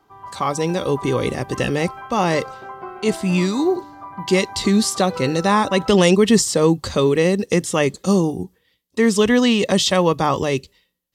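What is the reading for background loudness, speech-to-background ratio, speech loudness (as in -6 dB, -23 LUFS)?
-35.0 LUFS, 16.5 dB, -18.5 LUFS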